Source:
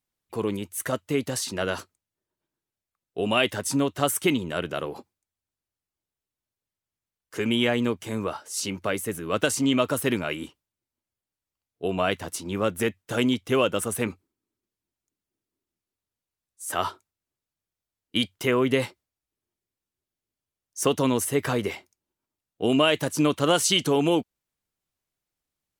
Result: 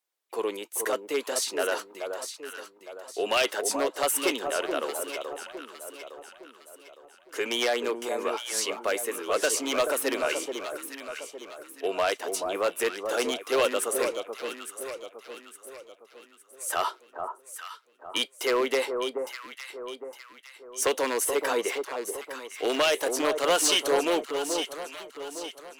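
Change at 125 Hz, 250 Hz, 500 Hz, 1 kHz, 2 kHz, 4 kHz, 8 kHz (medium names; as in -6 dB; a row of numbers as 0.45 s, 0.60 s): under -20 dB, -9.5 dB, 0.0 dB, +0.5 dB, 0.0 dB, -1.0 dB, +1.5 dB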